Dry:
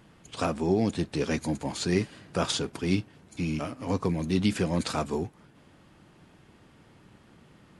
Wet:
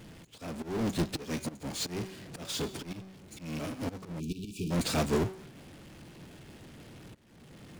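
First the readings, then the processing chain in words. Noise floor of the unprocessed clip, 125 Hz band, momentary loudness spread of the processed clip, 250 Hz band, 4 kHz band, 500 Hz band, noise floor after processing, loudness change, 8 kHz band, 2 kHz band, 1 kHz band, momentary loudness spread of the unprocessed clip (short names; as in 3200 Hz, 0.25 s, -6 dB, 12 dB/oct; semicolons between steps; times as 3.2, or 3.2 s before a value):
-58 dBFS, -5.5 dB, 21 LU, -6.0 dB, -3.5 dB, -6.0 dB, -54 dBFS, -5.5 dB, -1.5 dB, -5.5 dB, -6.0 dB, 7 LU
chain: de-hum 189.8 Hz, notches 38; auto swell 0.531 s; bell 1100 Hz -9 dB 0.94 oct; power-law curve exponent 0.35; spectral delete 4.2–4.71, 460–2300 Hz; upward expander 2.5:1, over -37 dBFS; gain -2 dB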